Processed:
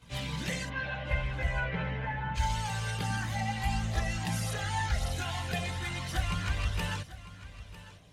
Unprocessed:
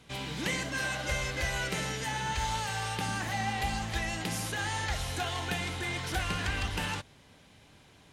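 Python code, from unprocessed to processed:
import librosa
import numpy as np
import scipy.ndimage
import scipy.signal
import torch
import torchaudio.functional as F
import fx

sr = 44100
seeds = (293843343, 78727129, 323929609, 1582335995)

y = fx.lowpass(x, sr, hz=fx.line((0.67, 3400.0), (2.34, 2100.0)), slope=24, at=(0.67, 2.34), fade=0.02)
y = fx.rider(y, sr, range_db=10, speed_s=0.5)
y = fx.chorus_voices(y, sr, voices=6, hz=0.46, base_ms=18, depth_ms=1.1, mix_pct=70)
y = y + 10.0 ** (-16.0 / 20.0) * np.pad(y, (int(950 * sr / 1000.0), 0))[:len(y)]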